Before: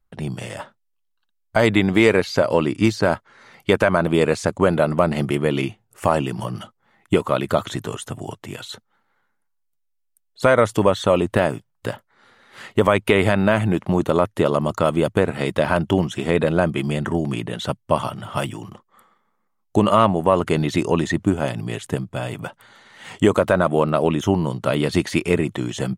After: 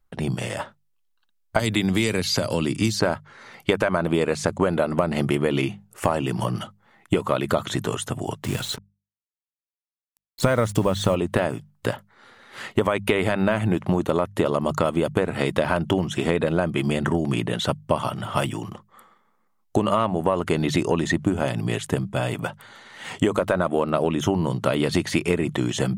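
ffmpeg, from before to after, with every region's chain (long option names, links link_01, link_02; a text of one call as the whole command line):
ffmpeg -i in.wav -filter_complex "[0:a]asettb=1/sr,asplit=3[link_01][link_02][link_03];[link_01]atrim=end=1.594[link_04];[link_02]atrim=start=1.59:end=3,asetpts=PTS-STARTPTS,afade=type=in:duration=0.004:curve=qsin,afade=type=out:start_time=1.406:duration=0.004:curve=qsin,acrossover=split=240|3000[link_05][link_06][link_07];[link_06]acompressor=threshold=-31dB:ratio=2.5:attack=3.2:release=140:knee=2.83:detection=peak[link_08];[link_05][link_08][link_07]amix=inputs=3:normalize=0,highshelf=frequency=4300:gain=7.5[link_09];[link_03]atrim=start=2.996[link_10];[link_04][link_09]acrossfade=duration=0.004:curve1=hsin:curve2=qsin[link_11];[link_11][link_10]acrossfade=duration=0.004:curve1=qsin:curve2=hsin,asettb=1/sr,asplit=3[link_12][link_13][link_14];[link_12]atrim=end=8.444[link_15];[link_13]atrim=start=8.44:end=11.15,asetpts=PTS-STARTPTS,afade=type=in:duration=0.004:curve=qsin,afade=type=out:start_time=2.706:duration=0.004:curve=qsin,bass=frequency=250:gain=9,treble=frequency=4000:gain=4,acrusher=bits=5:mix=0:aa=0.5[link_16];[link_14]atrim=start=11.146[link_17];[link_15][link_16]acrossfade=duration=0.004:curve1=hsin:curve2=qsin[link_18];[link_18][link_17]acrossfade=duration=0.004:curve1=qsin:curve2=hsin,bandreject=frequency=50:width_type=h:width=6,bandreject=frequency=100:width_type=h:width=6,bandreject=frequency=150:width_type=h:width=6,bandreject=frequency=200:width_type=h:width=6,acompressor=threshold=-20dB:ratio=6,volume=3dB" out.wav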